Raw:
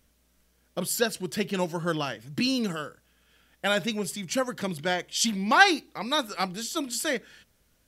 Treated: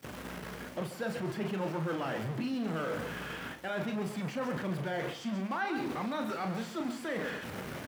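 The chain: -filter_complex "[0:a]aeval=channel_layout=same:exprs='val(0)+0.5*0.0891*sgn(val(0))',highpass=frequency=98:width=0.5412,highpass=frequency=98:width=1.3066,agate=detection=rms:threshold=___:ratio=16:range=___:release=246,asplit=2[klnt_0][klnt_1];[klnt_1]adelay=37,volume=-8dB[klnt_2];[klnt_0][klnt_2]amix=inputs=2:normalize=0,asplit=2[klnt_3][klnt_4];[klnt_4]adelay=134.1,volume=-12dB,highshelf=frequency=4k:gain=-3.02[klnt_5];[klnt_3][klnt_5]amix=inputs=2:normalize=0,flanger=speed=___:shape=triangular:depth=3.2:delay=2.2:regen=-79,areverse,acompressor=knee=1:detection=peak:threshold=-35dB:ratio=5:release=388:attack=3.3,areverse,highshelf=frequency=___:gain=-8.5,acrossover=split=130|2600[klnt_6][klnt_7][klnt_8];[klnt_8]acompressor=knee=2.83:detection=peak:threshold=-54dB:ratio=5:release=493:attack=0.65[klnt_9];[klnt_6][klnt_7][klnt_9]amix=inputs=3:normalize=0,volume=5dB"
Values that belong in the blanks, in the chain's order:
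-25dB, -32dB, 1.1, 3.7k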